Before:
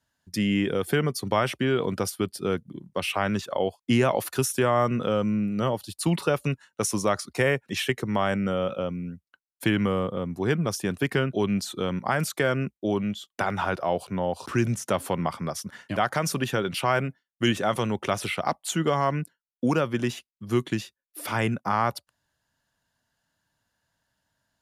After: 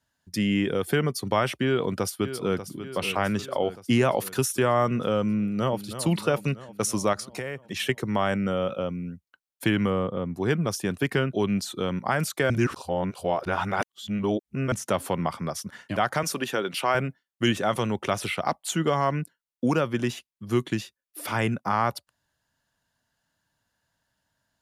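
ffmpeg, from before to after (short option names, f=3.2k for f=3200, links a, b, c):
-filter_complex "[0:a]asplit=2[a][b];[b]afade=t=in:st=1.65:d=0.01,afade=t=out:st=2.65:d=0.01,aecho=0:1:590|1180|1770|2360|2950|3540|4130:0.281838|0.169103|0.101462|0.0608771|0.0365262|0.0219157|0.0131494[c];[a][c]amix=inputs=2:normalize=0,asplit=2[d][e];[e]afade=t=in:st=5.4:d=0.01,afade=t=out:st=5.87:d=0.01,aecho=0:1:320|640|960|1280|1600|1920|2240|2560:0.281838|0.183195|0.119077|0.0773998|0.0503099|0.0327014|0.0212559|0.0138164[f];[d][f]amix=inputs=2:normalize=0,asettb=1/sr,asplit=3[g][h][i];[g]atrim=end=7.134[j];[h]atrim=start=7.13:end=7.8,asetpts=PTS-STARTPTS,afade=t=in:d=0.004:c=qsin,afade=t=out:st=0.666:d=0.004:c=qsin,acompressor=threshold=-28dB:ratio=10:attack=3.2:release=140:knee=1:detection=peak[k];[i]atrim=start=7.796[l];[j][k]acrossfade=d=0.004:c1=hsin:c2=qsin[m];[m][l]acrossfade=d=0.004:c1=qsin:c2=hsin,asettb=1/sr,asplit=3[n][o][p];[n]atrim=end=9.904[q];[o]atrim=start=9.9:end=10.35,asetpts=PTS-STARTPTS,afade=t=in:d=0.004:c=qsin,afade=t=out:st=0.446:d=0.004:c=qsin,aemphasis=mode=reproduction:type=cd[r];[p]atrim=start=10.346[s];[q][r]acrossfade=d=0.004:c1=hsin:c2=qsin[t];[t][s]acrossfade=d=0.004:c1=qsin:c2=hsin,asettb=1/sr,asplit=3[u][v][w];[u]atrim=end=16.234[x];[v]atrim=start=16.23:end=16.95,asetpts=PTS-STARTPTS,afade=t=in:d=0.004:c=qsin,afade=t=out:st=0.716:d=0.004:c=qsin,highpass=250[y];[w]atrim=start=16.946[z];[x][y]acrossfade=d=0.004:c1=hsin:c2=qsin[aa];[aa][z]acrossfade=d=0.004:c1=qsin:c2=hsin,asplit=3[ab][ac][ad];[ab]atrim=end=12.502[ae];[ac]atrim=start=12.498:end=14.722,asetpts=PTS-STARTPTS,areverse[af];[ad]atrim=start=14.718[ag];[ae][af]acrossfade=d=0.004:c1=hsin:c2=hsin[ah];[ah][ag]acrossfade=d=0.004:c1=hsin:c2=hsin"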